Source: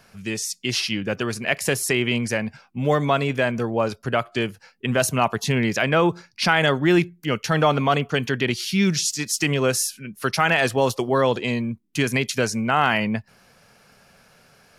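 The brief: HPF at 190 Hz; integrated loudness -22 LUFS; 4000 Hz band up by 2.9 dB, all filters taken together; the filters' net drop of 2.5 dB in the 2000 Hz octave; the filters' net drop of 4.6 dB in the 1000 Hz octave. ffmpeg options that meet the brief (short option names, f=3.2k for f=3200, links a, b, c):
-af "highpass=190,equalizer=f=1k:t=o:g=-6,equalizer=f=2k:t=o:g=-3,equalizer=f=4k:t=o:g=5.5,volume=1.5dB"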